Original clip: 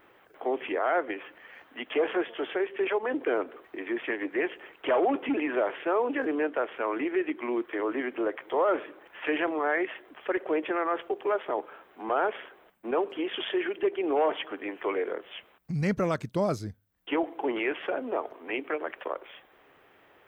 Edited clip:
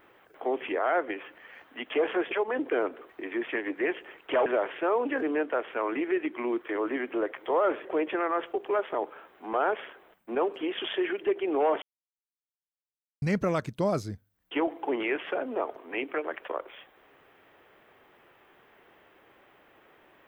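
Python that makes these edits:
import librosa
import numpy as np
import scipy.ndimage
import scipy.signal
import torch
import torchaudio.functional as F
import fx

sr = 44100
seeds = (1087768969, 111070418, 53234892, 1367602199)

y = fx.edit(x, sr, fx.cut(start_s=2.31, length_s=0.55),
    fx.cut(start_s=5.01, length_s=0.49),
    fx.cut(start_s=8.89, length_s=1.52),
    fx.silence(start_s=14.38, length_s=1.4), tone=tone)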